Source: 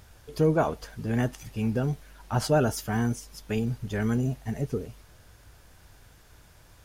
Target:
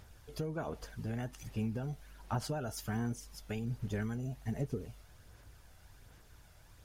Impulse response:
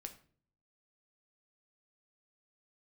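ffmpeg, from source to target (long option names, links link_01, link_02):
-af "acompressor=threshold=-27dB:ratio=10,aphaser=in_gain=1:out_gain=1:delay=1.5:decay=0.32:speed=1.3:type=sinusoidal,volume=-6.5dB"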